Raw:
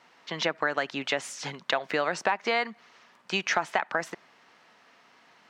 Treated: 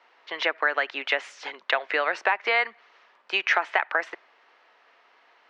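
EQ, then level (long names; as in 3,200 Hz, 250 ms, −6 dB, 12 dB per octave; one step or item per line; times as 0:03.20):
high-pass filter 360 Hz 24 dB per octave
low-pass filter 3,600 Hz 12 dB per octave
dynamic equaliser 2,100 Hz, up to +7 dB, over −42 dBFS, Q 0.9
0.0 dB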